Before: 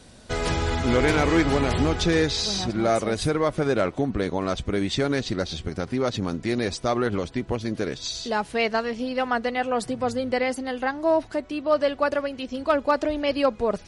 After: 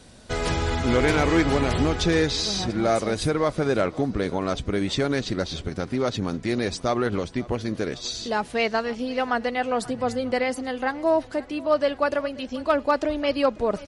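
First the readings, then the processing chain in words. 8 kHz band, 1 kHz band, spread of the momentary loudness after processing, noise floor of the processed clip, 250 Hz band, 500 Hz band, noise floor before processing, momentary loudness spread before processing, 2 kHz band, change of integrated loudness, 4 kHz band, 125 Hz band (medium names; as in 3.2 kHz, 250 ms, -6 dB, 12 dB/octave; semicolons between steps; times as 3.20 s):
0.0 dB, 0.0 dB, 7 LU, -43 dBFS, 0.0 dB, 0.0 dB, -46 dBFS, 7 LU, 0.0 dB, 0.0 dB, 0.0 dB, 0.0 dB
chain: feedback delay 536 ms, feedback 50%, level -21 dB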